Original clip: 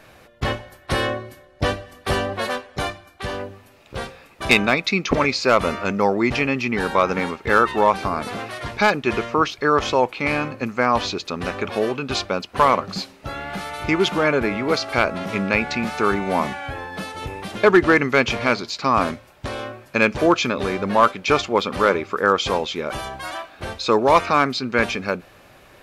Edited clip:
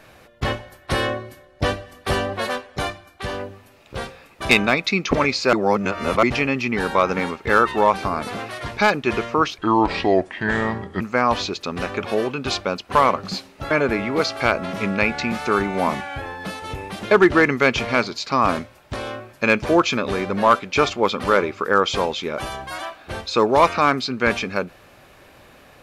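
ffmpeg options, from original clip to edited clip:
-filter_complex "[0:a]asplit=6[a][b][c][d][e][f];[a]atrim=end=5.532[g];[b]atrim=start=5.528:end=6.232,asetpts=PTS-STARTPTS,areverse[h];[c]atrim=start=6.228:end=9.584[i];[d]atrim=start=9.58:end=10.65,asetpts=PTS-STARTPTS,asetrate=33075,aresample=44100[j];[e]atrim=start=10.646:end=13.352[k];[f]atrim=start=14.228[l];[g][h]acrossfade=d=0.004:c1=hsin:c2=hsin[m];[m][i]acrossfade=d=0.004:c1=hsin:c2=hsin[n];[n][j]acrossfade=d=0.004:c1=hsin:c2=hsin[o];[o][k]acrossfade=d=0.004:c1=hsin:c2=hsin[p];[p][l]acrossfade=d=0.004:c1=hsin:c2=hsin"

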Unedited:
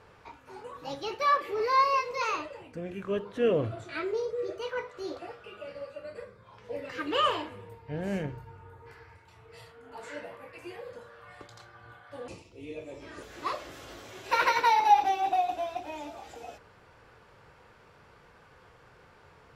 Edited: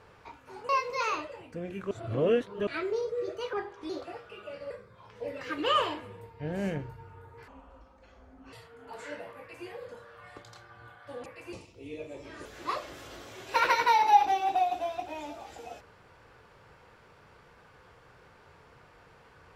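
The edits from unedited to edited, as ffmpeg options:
-filter_complex "[0:a]asplit=11[a][b][c][d][e][f][g][h][i][j][k];[a]atrim=end=0.692[l];[b]atrim=start=1.898:end=3.122[m];[c]atrim=start=3.118:end=3.882,asetpts=PTS-STARTPTS,areverse[n];[d]atrim=start=3.878:end=4.744[o];[e]atrim=start=4.74:end=5.04,asetpts=PTS-STARTPTS,asetrate=36162,aresample=44100,atrim=end_sample=16134,asetpts=PTS-STARTPTS[p];[f]atrim=start=5.036:end=5.852[q];[g]atrim=start=6.188:end=8.964[r];[h]atrim=start=8.96:end=9.57,asetpts=PTS-STARTPTS,asetrate=25578,aresample=44100,atrim=end_sample=46381,asetpts=PTS-STARTPTS[s];[i]atrim=start=9.566:end=12.302[t];[j]atrim=start=10.428:end=10.702[u];[k]atrim=start=12.298[v];[l][m]acrossfade=d=0.004:c1=hsin:c2=hsin[w];[w][n]acrossfade=d=0.004:c1=hsin:c2=hsin[x];[x][o]acrossfade=d=0.004:c1=hsin:c2=hsin[y];[y][p]acrossfade=d=0.004:c1=hsin:c2=hsin[z];[z][q]acrossfade=d=0.004:c1=hsin:c2=hsin[aa];[aa][r]acrossfade=d=0.004:c1=hsin:c2=hsin[ab];[ab][s]acrossfade=d=0.004:c1=hsin:c2=hsin[ac];[ac][t]acrossfade=d=0.004:c1=hsin:c2=hsin[ad];[ad][u]acrossfade=d=0.004:c1=hsin:c2=hsin[ae];[ae][v]acrossfade=d=0.004:c1=hsin:c2=hsin"

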